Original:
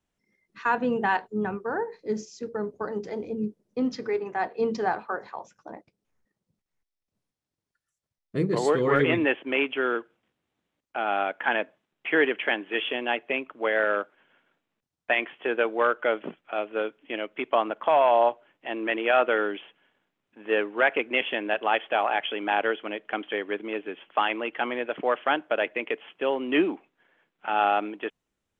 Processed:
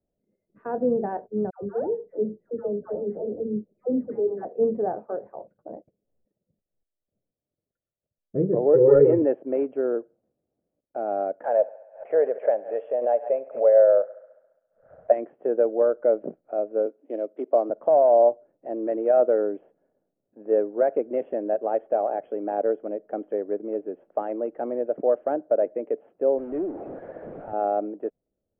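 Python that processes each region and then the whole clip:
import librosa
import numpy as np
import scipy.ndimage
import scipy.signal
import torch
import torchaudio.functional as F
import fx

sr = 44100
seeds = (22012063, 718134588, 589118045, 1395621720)

y = fx.chain(x, sr, fx.lowpass(hz=1900.0, slope=24),
    fx.dispersion(late='lows', ms=126.0, hz=880.0), at=(1.5, 4.45))
y = fx.chain(y, sr, fx.lowpass(hz=2200.0, slope=12),
    fx.comb(ms=2.2, depth=0.96), at=(8.73, 9.22))
y = fx.chain(y, sr, fx.low_shelf_res(hz=420.0, db=-9.5, q=3.0),
    fx.echo_thinned(ms=68, feedback_pct=69, hz=330.0, wet_db=-19),
    fx.pre_swell(db_per_s=140.0), at=(11.44, 15.12))
y = fx.chain(y, sr, fx.highpass(hz=230.0, slope=24),
    fx.resample_bad(factor=8, down='none', up='zero_stuff'), at=(16.86, 17.7))
y = fx.chain(y, sr, fx.delta_mod(bps=32000, step_db=-27.0),
    fx.low_shelf(hz=210.0, db=-8.0),
    fx.tube_stage(drive_db=25.0, bias=0.3), at=(26.38, 27.53))
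y = scipy.signal.sosfilt(scipy.signal.butter(4, 1300.0, 'lowpass', fs=sr, output='sos'), y)
y = fx.low_shelf_res(y, sr, hz=780.0, db=9.0, q=3.0)
y = y * librosa.db_to_amplitude(-9.0)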